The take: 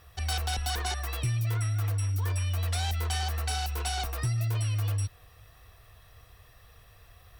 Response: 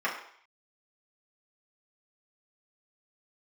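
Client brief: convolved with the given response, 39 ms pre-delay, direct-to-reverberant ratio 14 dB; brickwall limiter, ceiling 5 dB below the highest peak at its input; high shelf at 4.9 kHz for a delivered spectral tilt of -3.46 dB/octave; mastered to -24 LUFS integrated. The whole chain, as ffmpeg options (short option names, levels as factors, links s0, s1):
-filter_complex "[0:a]highshelf=f=4900:g=4.5,alimiter=level_in=1.06:limit=0.0631:level=0:latency=1,volume=0.944,asplit=2[s0][s1];[1:a]atrim=start_sample=2205,adelay=39[s2];[s1][s2]afir=irnorm=-1:irlink=0,volume=0.0562[s3];[s0][s3]amix=inputs=2:normalize=0,volume=2.37"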